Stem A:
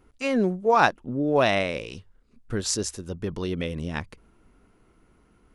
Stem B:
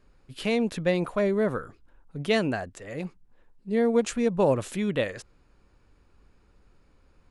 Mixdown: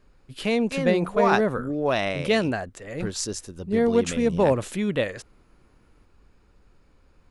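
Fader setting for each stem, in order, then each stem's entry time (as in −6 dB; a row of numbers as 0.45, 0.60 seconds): −3.0, +2.0 decibels; 0.50, 0.00 seconds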